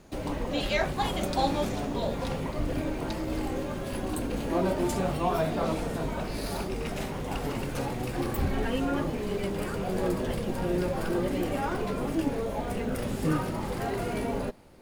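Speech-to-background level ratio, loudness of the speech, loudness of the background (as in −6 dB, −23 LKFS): −1.0 dB, −32.0 LKFS, −31.0 LKFS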